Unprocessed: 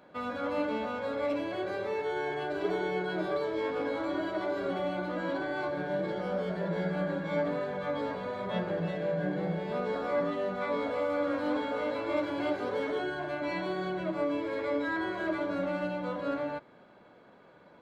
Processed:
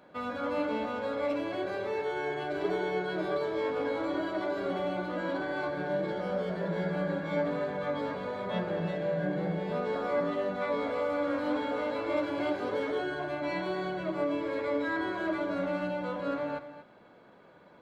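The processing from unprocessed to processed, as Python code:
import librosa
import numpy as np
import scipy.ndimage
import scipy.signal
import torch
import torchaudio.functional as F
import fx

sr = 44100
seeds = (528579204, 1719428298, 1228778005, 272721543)

y = x + 10.0 ** (-12.0 / 20.0) * np.pad(x, (int(232 * sr / 1000.0), 0))[:len(x)]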